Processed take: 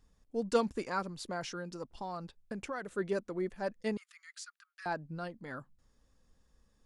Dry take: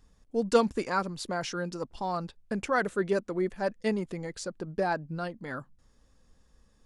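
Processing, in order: 1.53–2.91 compressor 6:1, threshold -30 dBFS, peak gain reduction 8.5 dB; 3.97–4.86 steep high-pass 1200 Hz 72 dB/oct; gain -6 dB

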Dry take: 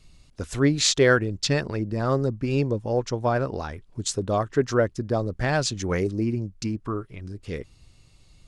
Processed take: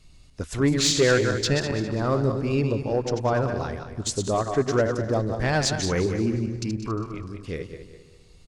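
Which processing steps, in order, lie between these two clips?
regenerating reverse delay 0.101 s, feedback 57%, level -7 dB; 5.45–5.91 bell 5500 Hz +3 dB 1.6 oct; soft clip -11 dBFS, distortion -19 dB; on a send: feedback echo 0.177 s, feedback 50%, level -17 dB

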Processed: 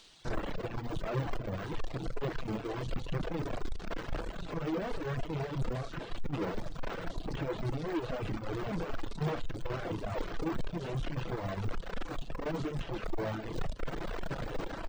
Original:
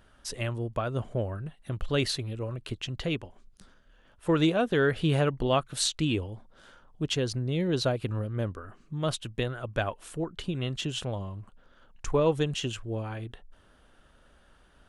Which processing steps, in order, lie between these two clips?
per-bin compression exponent 0.4; bands offset in time highs, lows 0.25 s, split 3600 Hz; flange 0.92 Hz, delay 4.4 ms, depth 7.3 ms, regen +10%; fuzz box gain 47 dB, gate -52 dBFS; air absorption 120 m; de-esser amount 70%; low shelf 65 Hz +9 dB; notches 60/120/180/240 Hz; reverb RT60 0.45 s, pre-delay 6 ms, DRR 8 dB; soft clip -16.5 dBFS, distortion -8 dB; reverb removal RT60 1.4 s; upward expander 2.5:1, over -29 dBFS; gain -7.5 dB

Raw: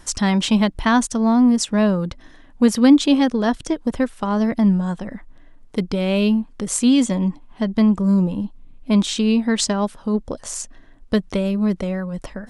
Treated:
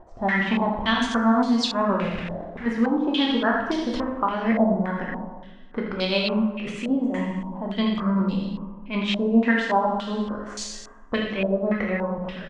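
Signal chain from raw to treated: low shelf 340 Hz -4.5 dB; notches 50/100/150/200/250 Hz; in parallel at 0 dB: level quantiser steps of 17 dB; on the sum: limiter -13 dBFS, peak gain reduction 10.5 dB; 2.01–2.66 companded quantiser 2-bit; tremolo 7.8 Hz, depth 73%; on a send: echo 82 ms -9 dB; on the sum: plate-style reverb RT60 1.3 s, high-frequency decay 1×, DRR -1.5 dB; stepped low-pass 3.5 Hz 680–4300 Hz; gain -3.5 dB

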